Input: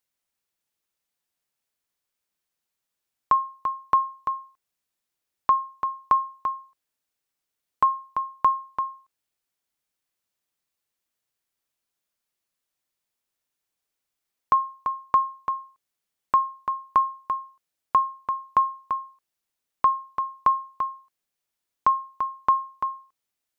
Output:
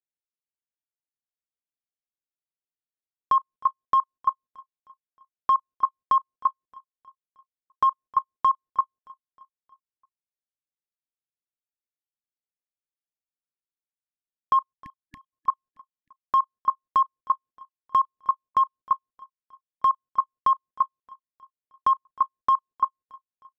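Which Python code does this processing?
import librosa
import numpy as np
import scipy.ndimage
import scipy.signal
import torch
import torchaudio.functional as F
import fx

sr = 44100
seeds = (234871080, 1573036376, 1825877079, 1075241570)

p1 = fx.wiener(x, sr, points=41)
p2 = fx.spec_erase(p1, sr, start_s=14.73, length_s=0.6, low_hz=310.0, high_hz=1700.0)
p3 = np.clip(p2, -10.0 ** (-20.0 / 20.0), 10.0 ** (-20.0 / 20.0))
p4 = p2 + (p3 * 10.0 ** (-7.5 / 20.0))
p5 = fx.level_steps(p4, sr, step_db=23)
p6 = p5 + fx.echo_feedback(p5, sr, ms=312, feedback_pct=53, wet_db=-21, dry=0)
y = fx.dynamic_eq(p6, sr, hz=1200.0, q=1.3, threshold_db=-36.0, ratio=4.0, max_db=6)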